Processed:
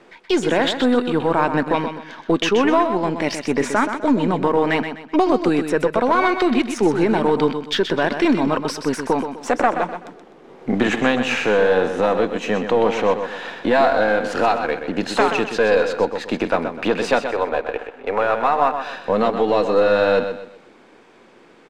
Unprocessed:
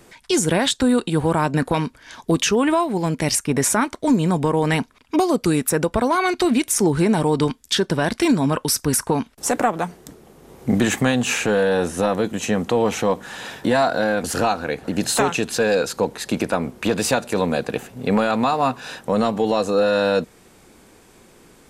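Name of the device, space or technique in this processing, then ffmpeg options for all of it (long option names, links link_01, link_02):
crystal radio: -filter_complex "[0:a]asettb=1/sr,asplit=3[link_01][link_02][link_03];[link_01]atrim=end=17.244[link_04];[link_02]atrim=start=17.24:end=18.81,asetpts=PTS-STARTPTS,afade=type=in:duration=0.004:curve=qsin,afade=type=out:start_time=1.566:duration=0.004:curve=qsin,acrossover=split=360 2900:gain=0.0631 1 0.178[link_05][link_06][link_07];[link_05][link_06][link_07]amix=inputs=3:normalize=0[link_08];[link_03]atrim=start=18.806[link_09];[link_04][link_08]acrossfade=duration=0.004:curve1=hsin:curve2=qsin[link_10];[link_10][link_09]acrossfade=duration=0.004:curve1=qsin:curve2=hsin,highpass=260,lowpass=3100,aecho=1:1:126|252|378|504:0.376|0.124|0.0409|0.0135,aeval=exprs='if(lt(val(0),0),0.708*val(0),val(0))':channel_layout=same,volume=4dB"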